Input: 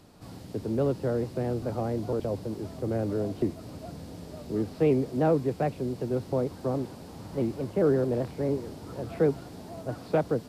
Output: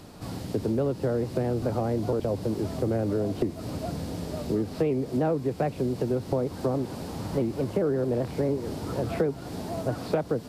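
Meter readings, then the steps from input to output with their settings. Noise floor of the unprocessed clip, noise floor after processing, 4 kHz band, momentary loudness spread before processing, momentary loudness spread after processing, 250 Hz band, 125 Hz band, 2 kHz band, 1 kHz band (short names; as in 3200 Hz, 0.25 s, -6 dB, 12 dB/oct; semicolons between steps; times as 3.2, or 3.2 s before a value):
-45 dBFS, -41 dBFS, +5.0 dB, 17 LU, 7 LU, +1.5 dB, +2.0 dB, +1.5 dB, +1.5 dB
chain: compressor 5:1, threshold -32 dBFS, peak gain reduction 12.5 dB; gain +8.5 dB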